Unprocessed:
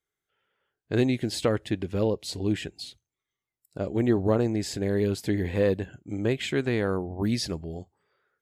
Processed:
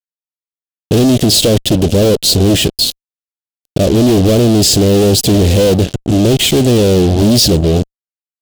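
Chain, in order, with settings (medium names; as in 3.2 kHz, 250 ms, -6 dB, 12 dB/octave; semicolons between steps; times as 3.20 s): fuzz box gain 45 dB, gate -43 dBFS; high-order bell 1.4 kHz -14 dB; trim +6 dB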